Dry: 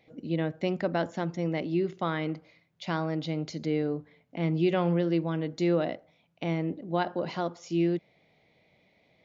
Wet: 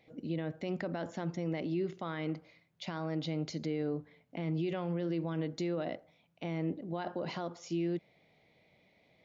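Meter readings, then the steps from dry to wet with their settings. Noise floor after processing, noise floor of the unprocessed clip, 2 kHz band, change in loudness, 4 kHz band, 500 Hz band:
-69 dBFS, -67 dBFS, -7.5 dB, -7.0 dB, -5.5 dB, -7.5 dB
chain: limiter -24.5 dBFS, peak gain reduction 10.5 dB; gain -2 dB

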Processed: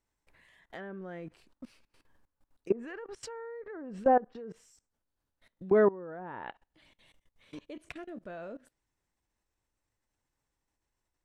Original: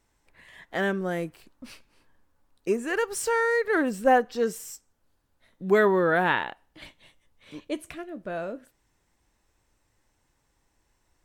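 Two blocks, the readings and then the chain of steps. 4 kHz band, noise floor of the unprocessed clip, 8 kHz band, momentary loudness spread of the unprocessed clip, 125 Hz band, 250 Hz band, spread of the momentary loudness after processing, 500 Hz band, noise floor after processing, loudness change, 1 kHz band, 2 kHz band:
under -15 dB, -72 dBFS, under -15 dB, 17 LU, -9.5 dB, -7.5 dB, 22 LU, -6.0 dB, -85 dBFS, -6.5 dB, -7.0 dB, -17.0 dB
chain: treble ducked by the level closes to 930 Hz, closed at -20 dBFS; level quantiser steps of 21 dB

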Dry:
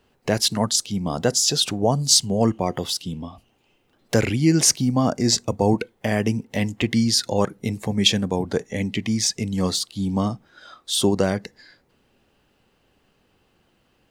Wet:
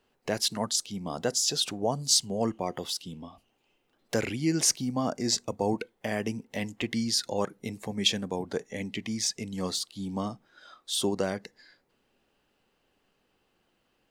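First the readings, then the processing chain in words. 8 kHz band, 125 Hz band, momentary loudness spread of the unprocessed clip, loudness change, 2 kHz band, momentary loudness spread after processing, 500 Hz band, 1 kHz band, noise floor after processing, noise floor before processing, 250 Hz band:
-7.0 dB, -13.0 dB, 10 LU, -8.0 dB, -7.0 dB, 11 LU, -8.0 dB, -7.5 dB, -73 dBFS, -65 dBFS, -9.5 dB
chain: bell 82 Hz -8 dB 2.3 oct; gain -7 dB

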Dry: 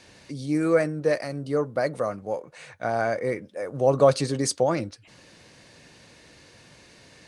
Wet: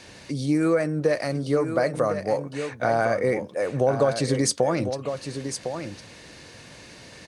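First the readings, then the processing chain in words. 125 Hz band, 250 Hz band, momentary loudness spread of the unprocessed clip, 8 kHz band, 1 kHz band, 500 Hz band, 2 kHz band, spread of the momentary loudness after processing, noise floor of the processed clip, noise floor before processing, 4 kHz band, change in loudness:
+3.0 dB, +3.0 dB, 14 LU, +3.5 dB, +1.5 dB, +1.0 dB, +2.5 dB, 22 LU, -46 dBFS, -53 dBFS, +3.0 dB, +0.5 dB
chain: compressor 6:1, threshold -24 dBFS, peak gain reduction 11.5 dB; echo 1.055 s -8.5 dB; gain +6 dB

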